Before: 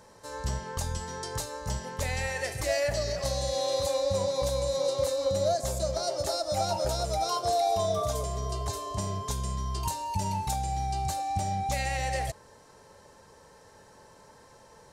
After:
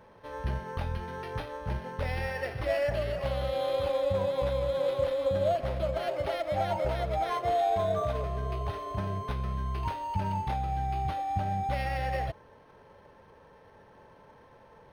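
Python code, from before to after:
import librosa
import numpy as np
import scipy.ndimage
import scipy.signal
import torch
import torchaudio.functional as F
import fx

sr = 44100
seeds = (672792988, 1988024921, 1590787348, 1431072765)

y = fx.high_shelf(x, sr, hz=4000.0, db=-6.5)
y = np.interp(np.arange(len(y)), np.arange(len(y))[::6], y[::6])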